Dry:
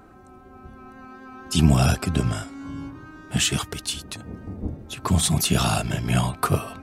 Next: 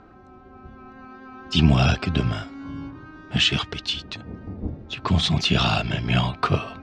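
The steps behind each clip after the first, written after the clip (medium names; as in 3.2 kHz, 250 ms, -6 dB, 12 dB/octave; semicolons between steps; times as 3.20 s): low-pass 5 kHz 24 dB/octave; dynamic bell 3 kHz, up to +6 dB, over -41 dBFS, Q 1.1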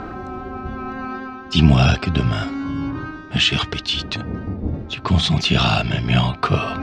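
harmonic-percussive split percussive -3 dB; reverse; upward compressor, threshold -22 dBFS; reverse; trim +5 dB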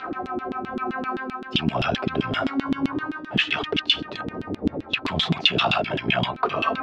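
peak limiter -11 dBFS, peak gain reduction 9 dB; LFO band-pass saw down 7.7 Hz 240–3500 Hz; trim +8.5 dB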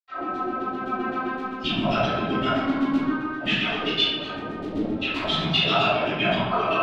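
reverberation RT60 1.2 s, pre-delay 78 ms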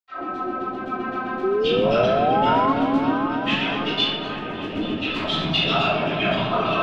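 painted sound rise, 1.43–2.73 s, 370–1100 Hz -21 dBFS; delay with an opening low-pass 278 ms, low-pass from 750 Hz, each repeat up 1 oct, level -6 dB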